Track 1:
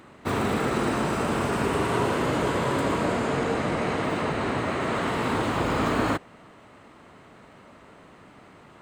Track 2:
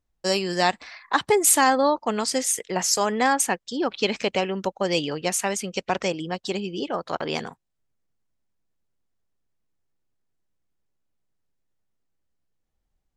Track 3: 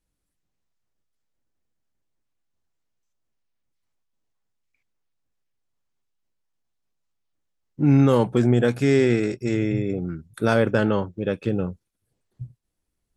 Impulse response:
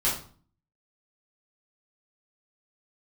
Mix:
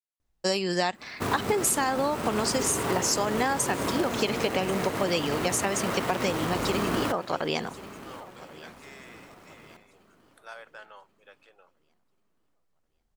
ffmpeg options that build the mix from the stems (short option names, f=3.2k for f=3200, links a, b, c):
-filter_complex "[0:a]acrusher=bits=2:mode=log:mix=0:aa=0.000001,adelay=950,volume=-3dB,asplit=2[a][b];[b]volume=-19dB[c];[1:a]adelay=200,volume=1dB,asplit=2[d][e];[e]volume=-21dB[f];[2:a]highpass=f=720:w=0.5412,highpass=f=720:w=1.3066,volume=-18dB[g];[c][f]amix=inputs=2:normalize=0,aecho=0:1:1086|2172|3258|4344|5430:1|0.35|0.122|0.0429|0.015[h];[a][d][g][h]amix=inputs=4:normalize=0,acompressor=threshold=-22dB:ratio=6"